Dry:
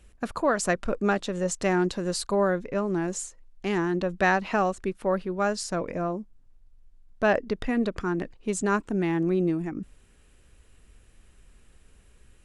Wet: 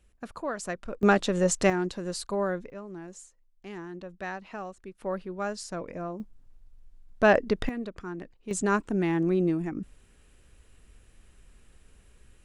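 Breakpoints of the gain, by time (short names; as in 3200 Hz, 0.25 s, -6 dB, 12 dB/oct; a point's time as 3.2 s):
-9 dB
from 1.03 s +3.5 dB
from 1.7 s -5 dB
from 2.7 s -14 dB
from 4.98 s -6.5 dB
from 6.2 s +2.5 dB
from 7.69 s -9.5 dB
from 8.51 s -0.5 dB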